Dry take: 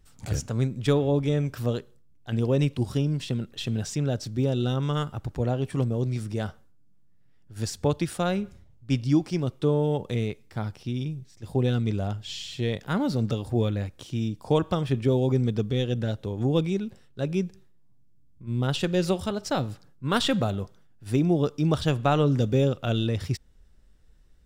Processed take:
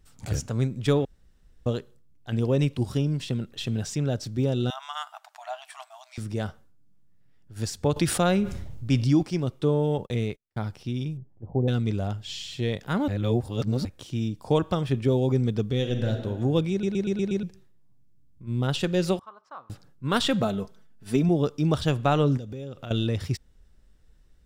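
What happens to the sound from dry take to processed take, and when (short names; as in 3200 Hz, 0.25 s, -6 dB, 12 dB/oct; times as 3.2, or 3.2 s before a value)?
1.05–1.66 room tone
4.7–6.18 brick-wall FIR high-pass 620 Hz
7.96–9.23 fast leveller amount 50%
9.98–10.64 gate -41 dBFS, range -38 dB
11.17–11.68 Chebyshev low-pass 810 Hz, order 3
13.08–13.85 reverse
15.76–16.2 reverb throw, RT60 1.6 s, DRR 4.5 dB
16.71 stutter in place 0.12 s, 6 plays
19.19–19.7 band-pass 1100 Hz, Q 8.6
20.42–21.29 comb 4.6 ms, depth 66%
22.37–22.91 compressor, threshold -34 dBFS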